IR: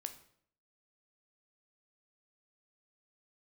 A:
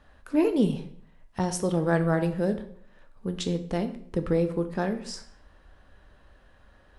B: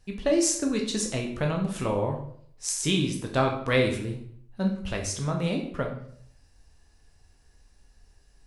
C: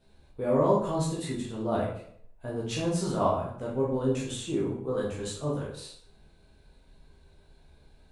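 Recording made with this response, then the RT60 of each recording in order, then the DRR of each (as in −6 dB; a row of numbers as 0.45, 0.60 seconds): A; 0.65, 0.65, 0.65 seconds; 7.5, 1.0, −6.0 decibels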